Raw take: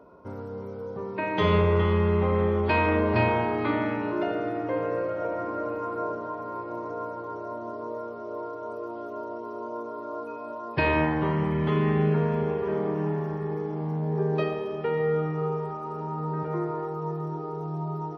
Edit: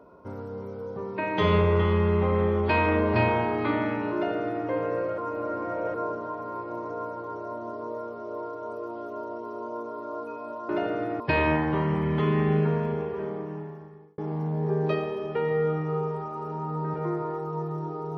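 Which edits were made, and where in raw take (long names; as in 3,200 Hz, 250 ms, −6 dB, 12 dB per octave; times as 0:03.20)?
0:04.14–0:04.65: duplicate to 0:10.69
0:05.18–0:05.94: reverse
0:12.06–0:13.67: fade out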